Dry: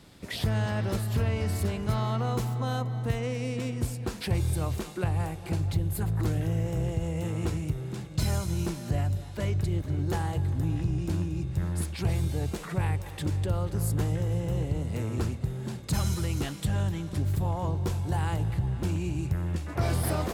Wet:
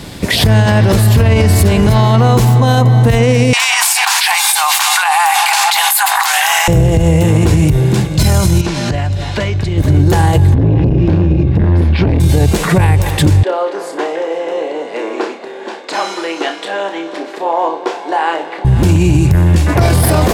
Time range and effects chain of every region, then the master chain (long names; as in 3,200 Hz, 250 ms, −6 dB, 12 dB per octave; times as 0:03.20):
0:03.53–0:06.68: Chebyshev high-pass filter 780 Hz, order 6 + envelope flattener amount 100%
0:08.61–0:09.78: low-pass filter 4,900 Hz + tilt shelving filter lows −4.5 dB, about 710 Hz + downward compressor 10 to 1, threshold −36 dBFS
0:10.54–0:12.20: high-frequency loss of the air 320 metres + double-tracking delay 26 ms −8.5 dB + saturating transformer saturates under 320 Hz
0:13.43–0:18.65: Bessel high-pass filter 580 Hz, order 8 + head-to-tape spacing loss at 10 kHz 27 dB + flutter between parallel walls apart 5.2 metres, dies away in 0.27 s
whole clip: notch filter 1,300 Hz, Q 11; boost into a limiter +25.5 dB; level −1 dB